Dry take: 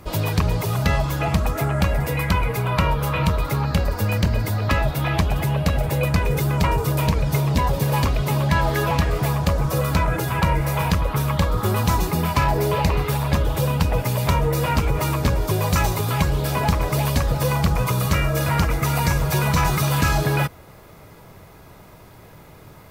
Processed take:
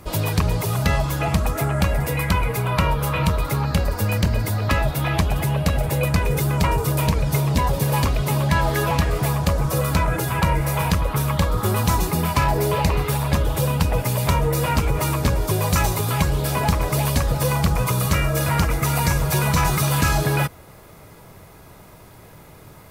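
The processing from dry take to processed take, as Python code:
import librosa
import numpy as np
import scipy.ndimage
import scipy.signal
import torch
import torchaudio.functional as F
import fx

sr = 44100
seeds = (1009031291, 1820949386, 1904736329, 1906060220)

y = fx.peak_eq(x, sr, hz=10000.0, db=5.0, octaves=1.0)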